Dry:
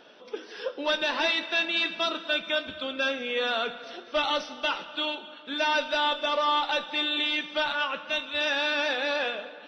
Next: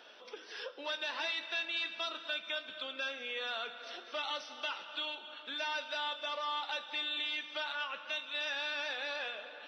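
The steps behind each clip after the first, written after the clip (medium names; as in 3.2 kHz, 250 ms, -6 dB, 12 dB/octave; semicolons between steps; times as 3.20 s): compression 2:1, threshold -40 dBFS, peak gain reduction 10 dB; high-pass 940 Hz 6 dB/octave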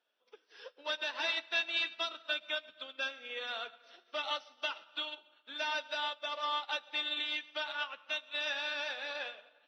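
on a send at -10 dB: reverberation RT60 0.40 s, pre-delay 70 ms; on the sum: upward expansion 2.5:1, over -55 dBFS; trim +5 dB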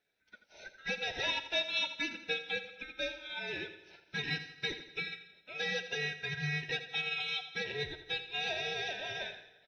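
split-band scrambler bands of 1 kHz; on a send: feedback delay 84 ms, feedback 48%, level -12 dB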